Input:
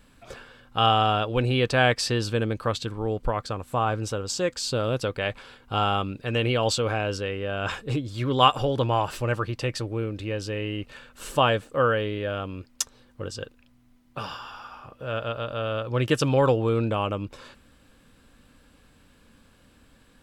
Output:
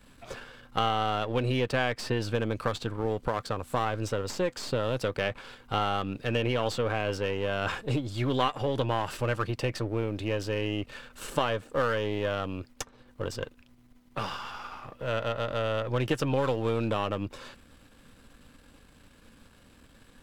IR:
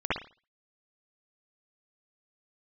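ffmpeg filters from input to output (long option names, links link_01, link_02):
-filter_complex "[0:a]aeval=exprs='if(lt(val(0),0),0.447*val(0),val(0))':channel_layout=same,acrossover=split=83|2600[link_01][link_02][link_03];[link_01]acompressor=threshold=-47dB:ratio=4[link_04];[link_02]acompressor=threshold=-28dB:ratio=4[link_05];[link_03]acompressor=threshold=-45dB:ratio=4[link_06];[link_04][link_05][link_06]amix=inputs=3:normalize=0,volume=3.5dB"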